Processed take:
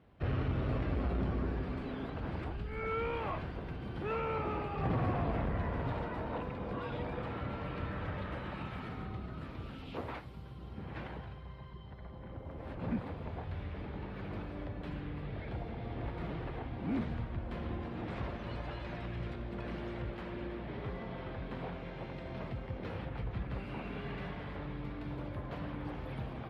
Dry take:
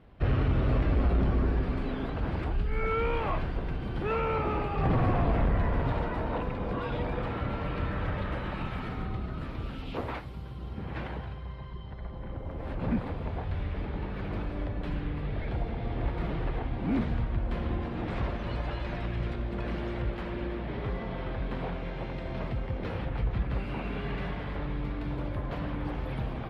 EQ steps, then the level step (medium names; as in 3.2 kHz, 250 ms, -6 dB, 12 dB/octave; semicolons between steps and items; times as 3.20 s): high-pass 64 Hz; -6.0 dB